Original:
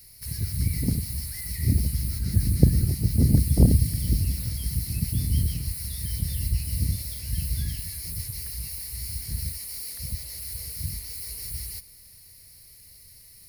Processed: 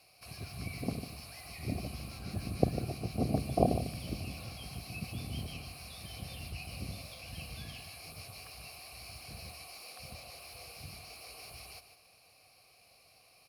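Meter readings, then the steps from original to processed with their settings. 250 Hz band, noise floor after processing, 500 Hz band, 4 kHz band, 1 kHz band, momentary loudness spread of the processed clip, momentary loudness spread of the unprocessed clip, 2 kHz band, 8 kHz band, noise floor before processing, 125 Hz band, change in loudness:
-9.0 dB, -63 dBFS, +2.0 dB, -7.0 dB, no reading, 14 LU, 12 LU, -0.5 dB, -16.5 dB, -50 dBFS, -15.5 dB, -13.0 dB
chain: vowel filter a; delay 149 ms -11 dB; trim +15.5 dB

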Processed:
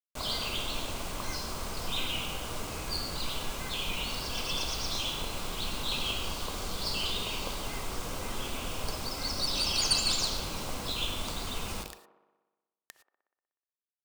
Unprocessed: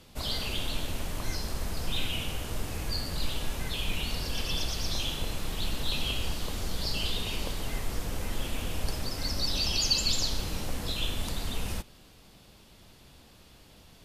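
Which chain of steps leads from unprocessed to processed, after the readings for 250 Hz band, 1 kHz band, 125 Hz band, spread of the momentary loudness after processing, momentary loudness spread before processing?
-2.5 dB, +3.5 dB, -5.5 dB, 9 LU, 8 LU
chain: tracing distortion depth 0.047 ms; brick-wall FIR low-pass 9.6 kHz; peaking EQ 1.1 kHz +5.5 dB 0.49 oct; hum notches 50/100 Hz; bit crusher 7-bit; band-stop 1.8 kHz, Q 9; reverse; upward compressor, threshold -34 dBFS; reverse; bass shelf 200 Hz -6.5 dB; on a send: feedback echo behind a band-pass 61 ms, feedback 70%, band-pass 640 Hz, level -11 dB; on the sum: gated-style reverb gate 130 ms rising, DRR 11.5 dB

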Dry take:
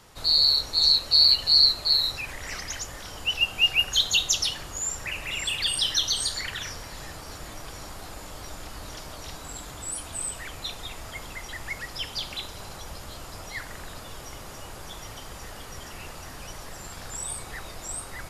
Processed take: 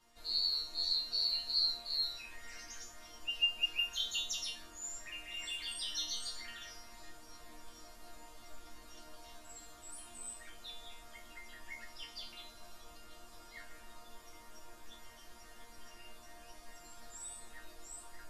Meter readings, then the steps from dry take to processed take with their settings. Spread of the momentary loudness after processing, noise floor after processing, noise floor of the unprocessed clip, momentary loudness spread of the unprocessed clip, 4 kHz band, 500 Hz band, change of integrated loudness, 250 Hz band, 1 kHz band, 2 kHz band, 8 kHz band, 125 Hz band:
24 LU, -56 dBFS, -42 dBFS, 23 LU, -14.0 dB, -15.0 dB, -14.0 dB, -15.0 dB, -14.5 dB, -11.5 dB, -14.5 dB, -23.0 dB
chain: chord resonator A#3 sus4, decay 0.36 s; trim +3 dB

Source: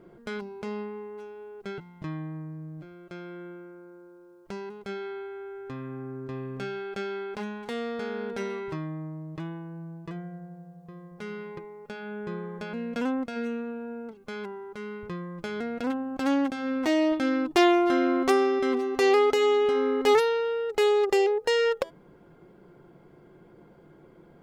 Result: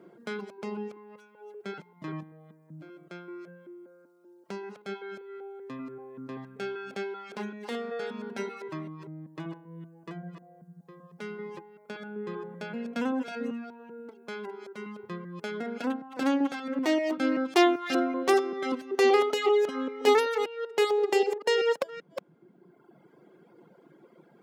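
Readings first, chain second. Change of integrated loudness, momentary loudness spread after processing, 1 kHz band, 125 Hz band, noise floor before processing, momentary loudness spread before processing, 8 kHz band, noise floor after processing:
-2.0 dB, 20 LU, -1.5 dB, -6.0 dB, -54 dBFS, 19 LU, 0.0 dB, -60 dBFS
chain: chunks repeated in reverse 193 ms, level -6.5 dB; high-pass 170 Hz 24 dB/octave; reverb removal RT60 1.5 s

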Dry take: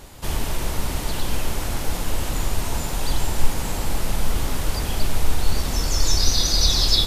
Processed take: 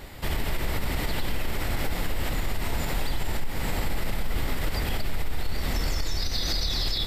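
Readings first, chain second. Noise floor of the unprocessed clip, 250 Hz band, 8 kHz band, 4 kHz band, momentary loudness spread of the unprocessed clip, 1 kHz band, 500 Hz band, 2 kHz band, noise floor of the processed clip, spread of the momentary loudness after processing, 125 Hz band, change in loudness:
-28 dBFS, -3.5 dB, -12.5 dB, -8.0 dB, 9 LU, -4.5 dB, -3.5 dB, -0.5 dB, -30 dBFS, 6 LU, -4.5 dB, -6.0 dB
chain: graphic EQ with 31 bands 1 kHz -3 dB, 2 kHz +7 dB, 6.3 kHz -11 dB, 10 kHz -10 dB; compression, threshold -17 dBFS, peak gain reduction 10 dB; peak limiter -18.5 dBFS, peak gain reduction 8.5 dB; trim +1 dB

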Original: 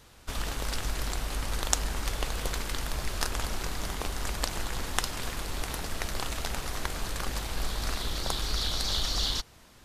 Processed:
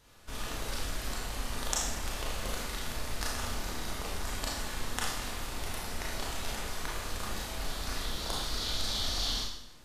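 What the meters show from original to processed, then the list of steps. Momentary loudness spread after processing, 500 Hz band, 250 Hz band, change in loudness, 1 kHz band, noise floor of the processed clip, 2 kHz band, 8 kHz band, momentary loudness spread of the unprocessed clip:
6 LU, -2.5 dB, -2.0 dB, -3.0 dB, -2.5 dB, -46 dBFS, -2.5 dB, -2.5 dB, 6 LU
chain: Schroeder reverb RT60 0.74 s, combs from 26 ms, DRR -4 dB; trim -8 dB

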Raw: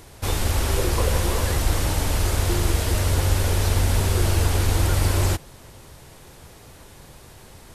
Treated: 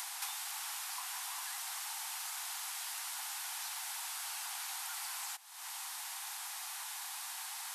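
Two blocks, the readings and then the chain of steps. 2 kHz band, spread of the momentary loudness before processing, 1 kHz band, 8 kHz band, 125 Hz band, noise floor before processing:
-12.5 dB, 3 LU, -14.0 dB, -8.5 dB, under -40 dB, -47 dBFS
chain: steep high-pass 740 Hz 96 dB/octave; treble shelf 3.9 kHz +6.5 dB; compression 12:1, threshold -46 dBFS, peak gain reduction 23 dB; trim +6.5 dB

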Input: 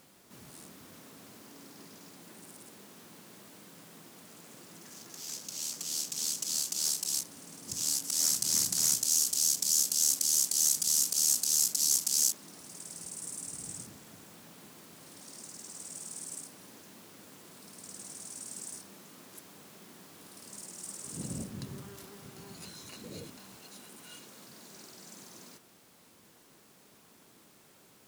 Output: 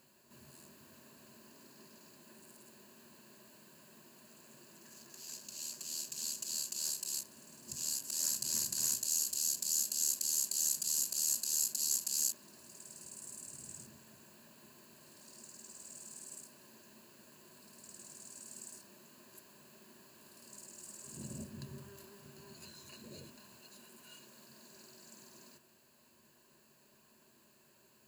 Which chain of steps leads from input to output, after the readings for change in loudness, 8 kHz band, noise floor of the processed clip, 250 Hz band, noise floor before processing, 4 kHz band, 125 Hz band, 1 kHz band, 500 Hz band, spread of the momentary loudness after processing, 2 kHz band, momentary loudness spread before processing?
-6.5 dB, -6.5 dB, -67 dBFS, -7.0 dB, -60 dBFS, -7.5 dB, -7.0 dB, -7.5 dB, -6.0 dB, 22 LU, -5.5 dB, 21 LU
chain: rippled EQ curve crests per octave 1.4, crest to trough 10 dB; trim -8 dB

